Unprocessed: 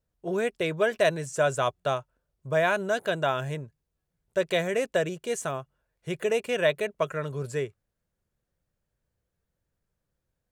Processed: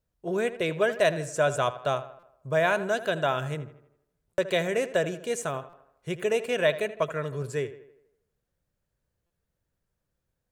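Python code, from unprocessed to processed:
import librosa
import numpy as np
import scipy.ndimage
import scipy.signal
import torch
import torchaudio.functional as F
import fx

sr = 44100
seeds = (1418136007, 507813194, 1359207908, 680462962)

p1 = x + fx.echo_tape(x, sr, ms=80, feedback_pct=54, wet_db=-13, lp_hz=3000.0, drive_db=12.0, wow_cents=20, dry=0)
y = fx.buffer_glitch(p1, sr, at_s=(2.19, 4.34, 5.69, 9.26), block=256, repeats=6)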